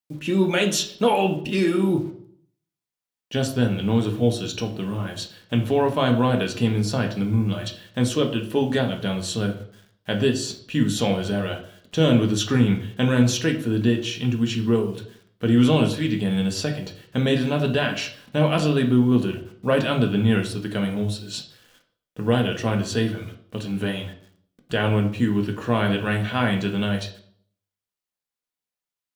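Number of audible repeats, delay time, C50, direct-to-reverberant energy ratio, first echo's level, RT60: none, none, 10.0 dB, 2.5 dB, none, 0.60 s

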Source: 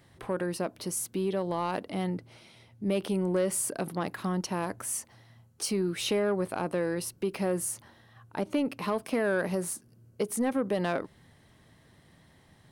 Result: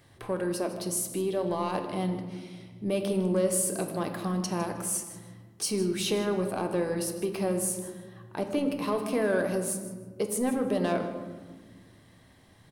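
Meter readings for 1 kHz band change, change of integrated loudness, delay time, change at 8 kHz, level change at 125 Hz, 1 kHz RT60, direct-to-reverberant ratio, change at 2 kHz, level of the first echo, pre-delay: +0.5 dB, +1.5 dB, 0.156 s, +2.5 dB, +1.0 dB, 1.3 s, 4.5 dB, -1.5 dB, -15.0 dB, 3 ms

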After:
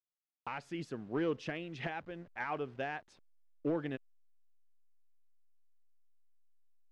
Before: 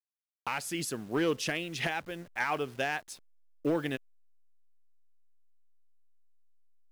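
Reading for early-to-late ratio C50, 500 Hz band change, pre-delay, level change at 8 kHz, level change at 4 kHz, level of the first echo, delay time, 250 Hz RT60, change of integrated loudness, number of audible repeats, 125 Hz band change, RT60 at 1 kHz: none, -5.0 dB, none, under -20 dB, -13.0 dB, none, none, none, -6.5 dB, none, -4.0 dB, none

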